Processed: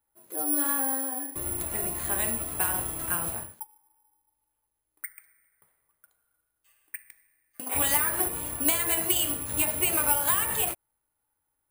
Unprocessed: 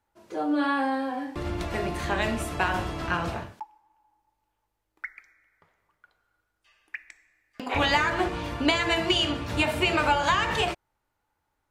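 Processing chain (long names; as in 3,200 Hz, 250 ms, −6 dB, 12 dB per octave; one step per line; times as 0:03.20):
bad sample-rate conversion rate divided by 4×, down filtered, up zero stuff
level −7.5 dB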